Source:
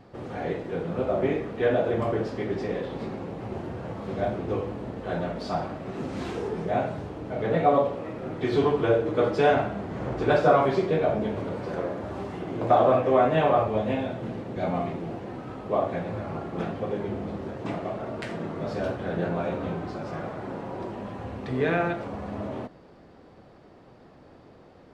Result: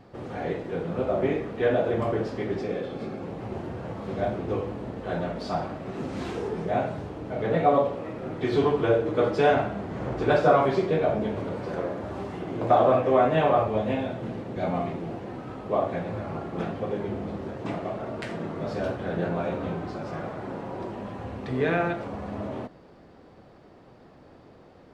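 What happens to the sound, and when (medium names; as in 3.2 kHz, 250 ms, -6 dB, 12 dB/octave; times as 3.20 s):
2.61–3.23 s: comb of notches 950 Hz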